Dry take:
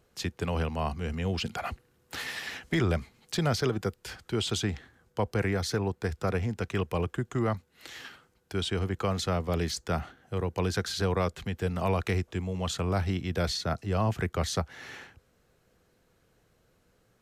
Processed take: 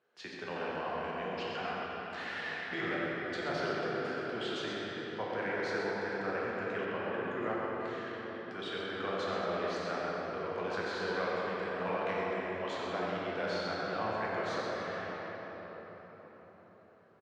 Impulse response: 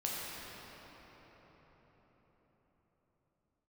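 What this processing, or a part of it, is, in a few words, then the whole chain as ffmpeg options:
station announcement: -filter_complex "[0:a]highpass=330,lowpass=3.5k,equalizer=f=1.6k:t=o:w=0.47:g=6,aecho=1:1:90.38|128.3:0.316|0.355[a];[1:a]atrim=start_sample=2205[b];[a][b]afir=irnorm=-1:irlink=0,asettb=1/sr,asplit=3[c][d][e];[c]atrim=end=6.854[f];[d]atrim=start=6.85:end=7.42,asetpts=PTS-STARTPTS,afade=t=in:d=0.004:c=qsin,afade=t=out:st=0.566:d=0.004:c=qsin,lowpass=5.6k[g];[e]atrim=start=7.416[h];[f][g]acrossfade=d=0.004:c1=hsin:c2=qsin[i];[i][h]acrossfade=d=0.004:c1=qsin:c2=hsin,volume=-7.5dB"

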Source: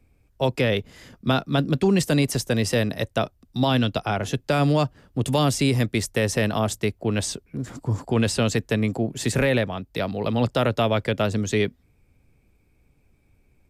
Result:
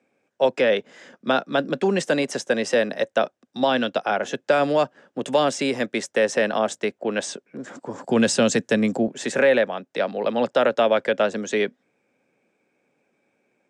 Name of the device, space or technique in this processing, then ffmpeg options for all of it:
television speaker: -filter_complex "[0:a]highpass=f=220:w=0.5412,highpass=f=220:w=1.3066,equalizer=f=290:t=q:w=4:g=-3,equalizer=f=550:t=q:w=4:g=7,equalizer=f=800:t=q:w=4:g=3,equalizer=f=1.6k:t=q:w=4:g=7,equalizer=f=4.5k:t=q:w=4:g=-6,lowpass=f=7.6k:w=0.5412,lowpass=f=7.6k:w=1.3066,asettb=1/sr,asplit=3[a][b][c];[a]atrim=end=8.044[d];[b]atrim=start=8.04:end=9.08,asetpts=PTS-STARTPTS,afade=t=in:d=0.004:c=qsin,afade=t=out:st=1.036:d=0.004:c=qsin,bass=f=250:g=12,treble=f=4k:g=9[e];[c]atrim=start=9.076[f];[d][e]acrossfade=d=0.004:c1=hsin:c2=qsin[g];[g][f]acrossfade=d=0.004:c1=qsin:c2=hsin"

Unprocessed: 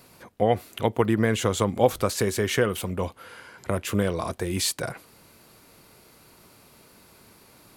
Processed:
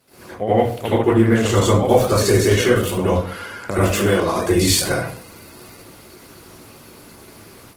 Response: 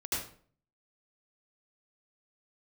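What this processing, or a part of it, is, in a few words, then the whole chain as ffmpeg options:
far-field microphone of a smart speaker: -filter_complex "[0:a]asettb=1/sr,asplit=3[a][b][c];[a]atrim=end=3.804[d];[b]atrim=start=3.8:end=4.34,asetpts=PTS-STARTPTS,afade=t=in:d=0.004:c=qsin,afade=t=out:st=0.536:d=0.004:c=qsin,highpass=f=300:p=1[e];[c]atrim=start=4.336[f];[d][e]acrossfade=d=0.004:c1=hsin:c2=qsin[g];[g][f]acrossfade=d=0.004:c1=qsin:c2=hsin[h];[1:a]atrim=start_sample=2205[i];[h][i]afir=irnorm=-1:irlink=0,highpass=f=80:p=1,dynaudnorm=f=110:g=3:m=9dB,volume=-1.5dB" -ar 48000 -c:a libopus -b:a 16k

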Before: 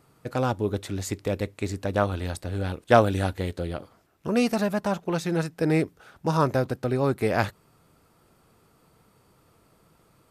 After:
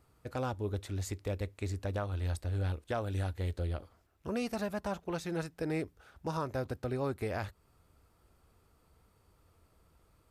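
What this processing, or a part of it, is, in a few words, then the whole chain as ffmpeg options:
car stereo with a boomy subwoofer: -af "lowshelf=f=100:t=q:w=1.5:g=10.5,alimiter=limit=-16dB:level=0:latency=1:release=296,volume=-8.5dB"

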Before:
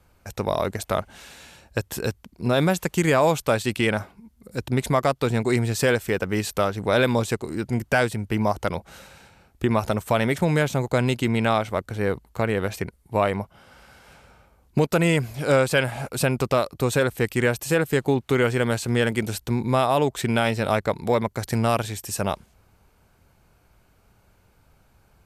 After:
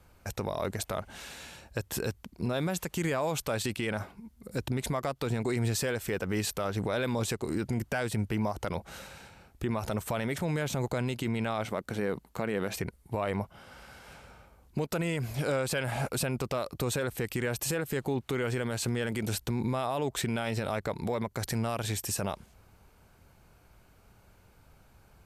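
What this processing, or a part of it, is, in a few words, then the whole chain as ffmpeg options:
stacked limiters: -filter_complex "[0:a]alimiter=limit=-15.5dB:level=0:latency=1:release=132,alimiter=limit=-21.5dB:level=0:latency=1:release=53,asettb=1/sr,asplit=3[a][b][c];[a]atrim=end=11.654[d];[b]atrim=start=11.65:end=12.74,asetpts=PTS-STARTPTS,afade=t=in:d=0.004:c=qsin,afade=t=out:st=1.086:d=0.004:c=qsin,lowshelf=f=130:t=q:w=1.5:g=-7[e];[c]atrim=start=12.736[f];[d][e]acrossfade=d=0.004:c1=hsin:c2=qsin[g];[g][f]acrossfade=d=0.004:c1=qsin:c2=hsin"

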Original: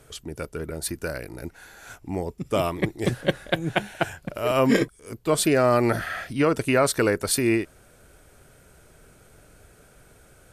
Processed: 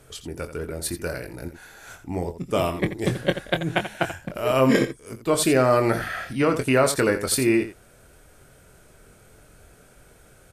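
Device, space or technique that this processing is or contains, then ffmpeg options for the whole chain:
slapback doubling: -filter_complex "[0:a]asplit=3[a][b][c];[b]adelay=23,volume=-8dB[d];[c]adelay=85,volume=-11dB[e];[a][d][e]amix=inputs=3:normalize=0"

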